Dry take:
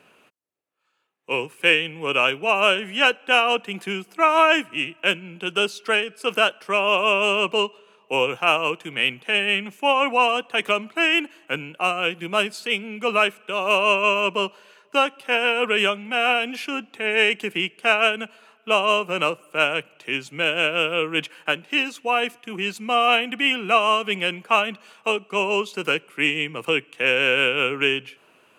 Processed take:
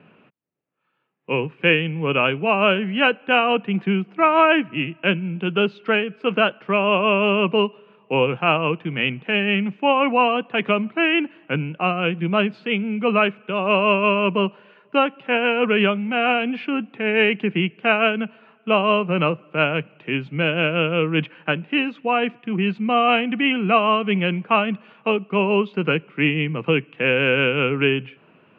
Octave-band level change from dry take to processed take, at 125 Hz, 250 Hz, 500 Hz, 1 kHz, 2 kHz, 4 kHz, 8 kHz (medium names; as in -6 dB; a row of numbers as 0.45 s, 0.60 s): +13.5 dB, +9.5 dB, +3.0 dB, +1.0 dB, -1.0 dB, -3.0 dB, under -30 dB